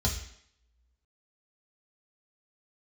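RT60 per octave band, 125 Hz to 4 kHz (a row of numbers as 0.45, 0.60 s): 0.50, 0.65, 0.70, 0.70, 0.70, 0.70 s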